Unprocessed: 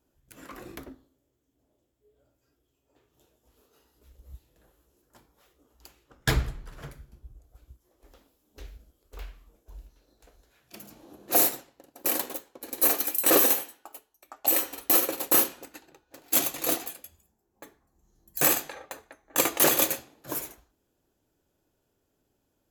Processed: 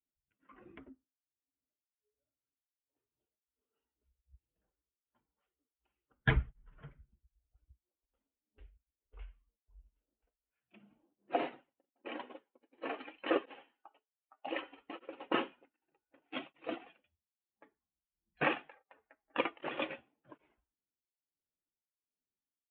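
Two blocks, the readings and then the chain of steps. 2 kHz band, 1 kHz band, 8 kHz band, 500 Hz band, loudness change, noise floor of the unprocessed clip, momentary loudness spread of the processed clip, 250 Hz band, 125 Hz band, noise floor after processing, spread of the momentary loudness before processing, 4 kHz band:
-6.0 dB, -7.0 dB, under -40 dB, -8.5 dB, -15.0 dB, -76 dBFS, 22 LU, -8.0 dB, -5.0 dB, under -85 dBFS, 19 LU, -13.5 dB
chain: per-bin expansion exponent 1.5; steep low-pass 3200 Hz 72 dB/oct; beating tremolo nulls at 1.3 Hz

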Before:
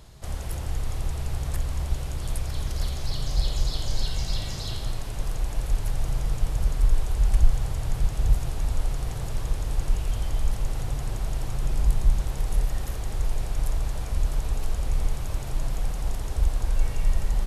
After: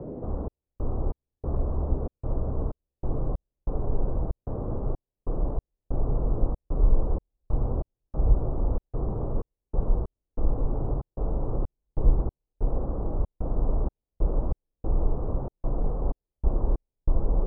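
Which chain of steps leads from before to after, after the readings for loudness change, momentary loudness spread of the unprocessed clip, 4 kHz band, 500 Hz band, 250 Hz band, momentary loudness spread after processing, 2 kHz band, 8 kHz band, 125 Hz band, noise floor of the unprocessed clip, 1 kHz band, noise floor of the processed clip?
-2.0 dB, 6 LU, under -40 dB, +6.5 dB, +5.5 dB, 9 LU, under -20 dB, under -40 dB, -2.0 dB, -32 dBFS, -0.5 dB, under -85 dBFS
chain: steep low-pass 1200 Hz 48 dB/oct; dynamic EQ 480 Hz, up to +4 dB, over -52 dBFS, Q 1.1; band noise 100–540 Hz -37 dBFS; step gate "xxx..xx..xxxx." 94 bpm -60 dB

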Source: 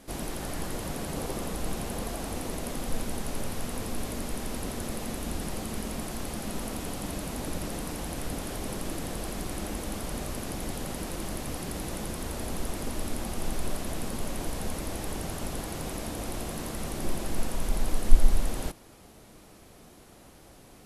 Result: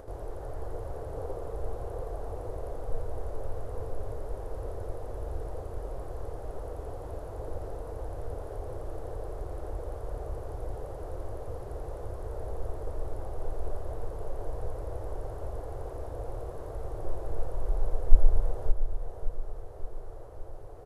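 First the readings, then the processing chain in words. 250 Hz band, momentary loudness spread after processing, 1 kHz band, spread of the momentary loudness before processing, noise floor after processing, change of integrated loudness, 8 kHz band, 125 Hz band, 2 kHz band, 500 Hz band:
-13.5 dB, 5 LU, -4.5 dB, 2 LU, -41 dBFS, -4.0 dB, -23.0 dB, -1.0 dB, -15.0 dB, 0.0 dB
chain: EQ curve 110 Hz 0 dB, 210 Hz -26 dB, 450 Hz +2 dB, 1500 Hz -12 dB, 2400 Hz -24 dB; upward compressor, threshold -38 dBFS; feedback echo 0.569 s, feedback 52%, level -8.5 dB

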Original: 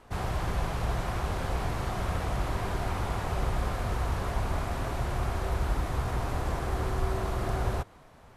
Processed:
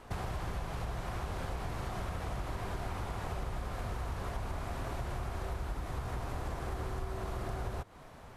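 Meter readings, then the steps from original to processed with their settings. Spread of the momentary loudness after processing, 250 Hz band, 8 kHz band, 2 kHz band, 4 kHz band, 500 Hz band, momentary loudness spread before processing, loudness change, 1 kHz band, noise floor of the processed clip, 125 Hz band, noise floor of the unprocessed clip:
1 LU, -7.5 dB, -7.0 dB, -7.0 dB, -7.0 dB, -7.5 dB, 2 LU, -7.5 dB, -7.5 dB, -52 dBFS, -7.5 dB, -54 dBFS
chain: compressor 6:1, threshold -37 dBFS, peak gain reduction 13.5 dB; gain +2.5 dB

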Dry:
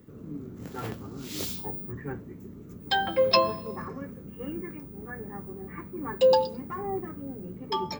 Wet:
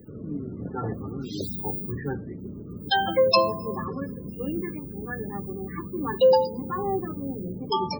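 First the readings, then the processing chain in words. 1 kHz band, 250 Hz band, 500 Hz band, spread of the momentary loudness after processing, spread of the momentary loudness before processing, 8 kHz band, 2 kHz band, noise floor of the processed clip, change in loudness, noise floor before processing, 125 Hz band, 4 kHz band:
+3.0 dB, +5.5 dB, +3.0 dB, 15 LU, 18 LU, n/a, +2.0 dB, -39 dBFS, +2.5 dB, -45 dBFS, +5.5 dB, +2.0 dB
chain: two-slope reverb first 0.54 s, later 4.6 s, from -19 dB, DRR 18 dB; crackle 150/s -39 dBFS; in parallel at 0 dB: compressor, threshold -30 dBFS, peak gain reduction 14 dB; on the sum: loudest bins only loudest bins 32

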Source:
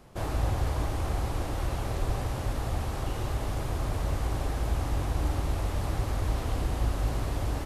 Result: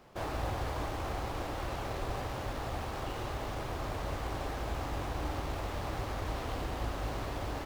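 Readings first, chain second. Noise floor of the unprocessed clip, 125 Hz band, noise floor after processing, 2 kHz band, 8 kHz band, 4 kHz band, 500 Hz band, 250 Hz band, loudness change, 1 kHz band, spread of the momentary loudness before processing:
-34 dBFS, -9.0 dB, -39 dBFS, -0.5 dB, -6.5 dB, -2.0 dB, -2.0 dB, -4.5 dB, -6.0 dB, -1.0 dB, 3 LU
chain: median filter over 5 samples; low shelf 230 Hz -10.5 dB

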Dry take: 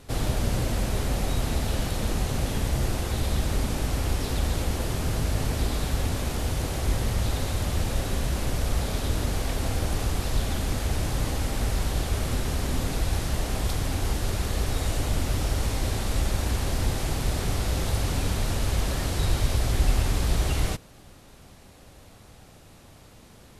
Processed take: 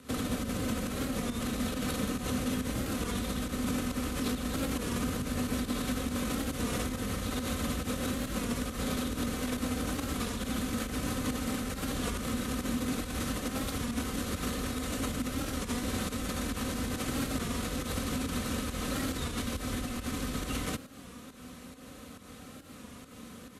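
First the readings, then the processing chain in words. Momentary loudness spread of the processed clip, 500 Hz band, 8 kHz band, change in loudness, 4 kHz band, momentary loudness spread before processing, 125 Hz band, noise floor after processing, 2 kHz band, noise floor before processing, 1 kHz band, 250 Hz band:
14 LU, -4.5 dB, -4.0 dB, -5.5 dB, -4.5 dB, 3 LU, -11.0 dB, -49 dBFS, -3.0 dB, -50 dBFS, -4.5 dB, +1.5 dB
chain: notch 700 Hz, Q 14; in parallel at +2.5 dB: negative-ratio compressor -29 dBFS; on the sum: bell 860 Hz -11 dB 0.21 oct; comb 3.9 ms, depth 40%; pump 138 bpm, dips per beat 1, -10 dB, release 0.18 s; frequency shift -14 Hz; thirty-one-band EQ 250 Hz +8 dB, 1250 Hz +5 dB, 5000 Hz -4 dB; limiter -14 dBFS, peak gain reduction 8 dB; HPF 75 Hz 12 dB/oct; record warp 33 1/3 rpm, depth 100 cents; gain -7 dB

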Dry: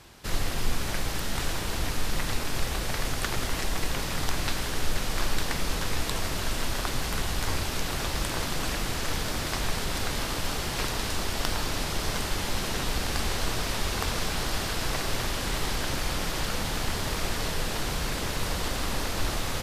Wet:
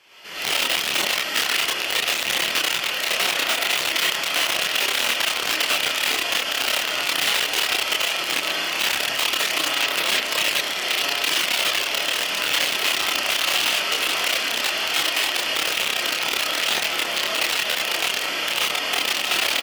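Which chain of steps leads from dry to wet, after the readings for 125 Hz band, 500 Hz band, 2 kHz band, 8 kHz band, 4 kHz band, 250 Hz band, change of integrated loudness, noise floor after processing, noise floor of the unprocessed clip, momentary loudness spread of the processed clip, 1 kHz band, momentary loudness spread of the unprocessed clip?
-17.0 dB, +4.0 dB, +12.0 dB, +7.5 dB, +13.0 dB, -3.0 dB, +10.0 dB, -27 dBFS, -32 dBFS, 2 LU, +6.0 dB, 2 LU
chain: in parallel at -11 dB: hard clip -19.5 dBFS, distortion -21 dB; on the sum: bell 8700 Hz -5 dB 0.77 oct; notch 3800 Hz, Q 5.7; on a send: feedback echo 64 ms, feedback 49%, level -4 dB; on the sum: digital reverb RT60 0.42 s, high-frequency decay 0.4×, pre-delay 70 ms, DRR -7.5 dB; wrapped overs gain 7 dB; HPF 340 Hz 12 dB/oct; bell 2900 Hz +12.5 dB 1.1 oct; chorus voices 4, 0.37 Hz, delay 28 ms, depth 3.6 ms; limiter -5.5 dBFS, peak gain reduction 8.5 dB; gain -5 dB

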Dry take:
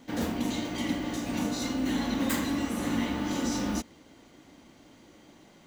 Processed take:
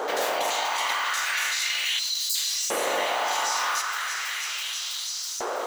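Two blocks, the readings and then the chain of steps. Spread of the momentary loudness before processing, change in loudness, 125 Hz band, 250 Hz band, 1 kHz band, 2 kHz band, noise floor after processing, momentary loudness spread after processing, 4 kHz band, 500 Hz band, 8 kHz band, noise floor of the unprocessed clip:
4 LU, +5.0 dB, under -20 dB, -18.5 dB, +11.5 dB, +12.5 dB, -32 dBFS, 5 LU, +13.5 dB, +7.0 dB, +12.5 dB, -56 dBFS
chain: spectral limiter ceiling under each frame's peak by 20 dB; HPF 78 Hz; spectral delete 1.99–2.35, 360–3900 Hz; band noise 260–1400 Hz -44 dBFS; thinning echo 0.326 s, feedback 82%, high-pass 840 Hz, level -17 dB; LFO high-pass saw up 0.37 Hz 430–5800 Hz; fast leveller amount 70%

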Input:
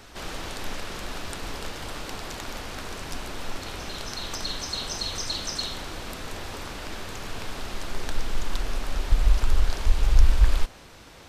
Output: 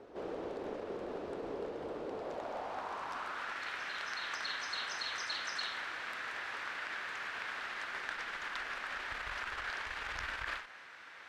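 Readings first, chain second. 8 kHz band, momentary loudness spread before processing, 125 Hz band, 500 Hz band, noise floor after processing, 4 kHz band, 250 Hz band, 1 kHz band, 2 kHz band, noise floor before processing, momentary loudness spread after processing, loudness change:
-15.5 dB, 11 LU, -28.0 dB, -3.5 dB, -53 dBFS, -9.5 dB, -9.5 dB, -3.0 dB, +0.5 dB, -48 dBFS, 5 LU, -9.0 dB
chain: added harmonics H 4 -22 dB, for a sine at -4 dBFS; band-pass sweep 440 Hz -> 1700 Hz, 2.08–3.6; ending taper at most 110 dB/s; gain +4.5 dB

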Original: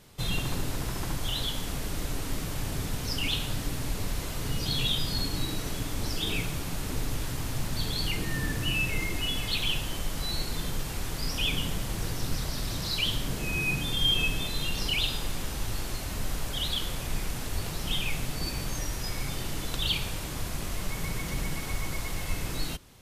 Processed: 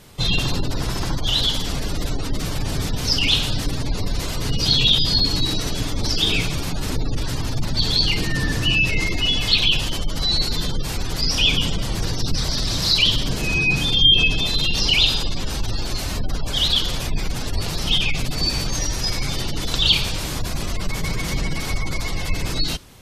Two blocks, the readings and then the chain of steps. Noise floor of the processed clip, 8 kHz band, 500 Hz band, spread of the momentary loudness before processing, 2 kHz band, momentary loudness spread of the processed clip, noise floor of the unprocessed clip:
-26 dBFS, +7.0 dB, +8.0 dB, 7 LU, +9.5 dB, 11 LU, -35 dBFS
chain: dynamic EQ 4700 Hz, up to +7 dB, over -47 dBFS, Q 1.2; spectral gate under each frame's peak -30 dB strong; gain +8.5 dB

